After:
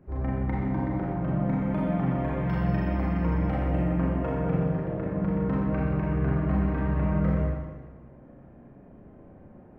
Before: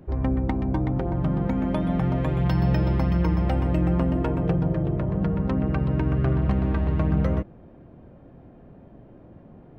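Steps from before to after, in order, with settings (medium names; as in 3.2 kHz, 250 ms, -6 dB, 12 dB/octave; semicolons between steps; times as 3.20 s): resonant high shelf 2.8 kHz -9 dB, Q 1.5; Schroeder reverb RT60 1.3 s, combs from 30 ms, DRR -5.5 dB; trim -8.5 dB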